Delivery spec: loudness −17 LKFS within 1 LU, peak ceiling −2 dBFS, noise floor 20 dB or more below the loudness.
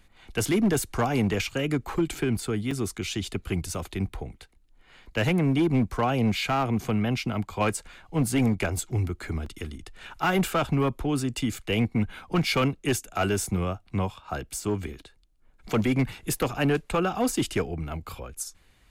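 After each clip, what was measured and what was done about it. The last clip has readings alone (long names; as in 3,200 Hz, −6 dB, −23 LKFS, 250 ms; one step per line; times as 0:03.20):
share of clipped samples 1.4%; peaks flattened at −17.5 dBFS; number of dropouts 3; longest dropout 3.5 ms; integrated loudness −27.5 LKFS; sample peak −17.5 dBFS; target loudness −17.0 LKFS
→ clipped peaks rebuilt −17.5 dBFS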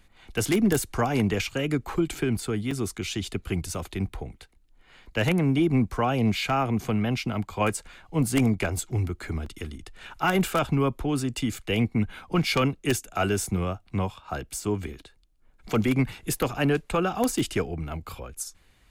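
share of clipped samples 0.0%; number of dropouts 3; longest dropout 3.5 ms
→ repair the gap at 0:02.71/0:09.46/0:16.42, 3.5 ms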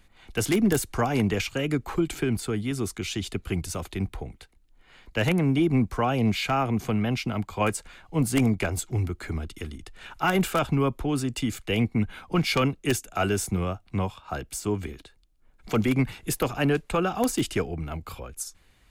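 number of dropouts 0; integrated loudness −27.0 LKFS; sample peak −8.5 dBFS; target loudness −17.0 LKFS
→ level +10 dB
brickwall limiter −2 dBFS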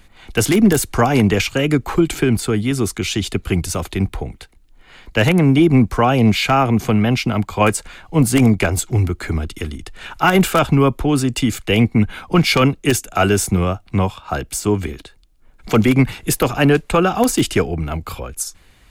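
integrated loudness −17.0 LKFS; sample peak −2.0 dBFS; background noise floor −49 dBFS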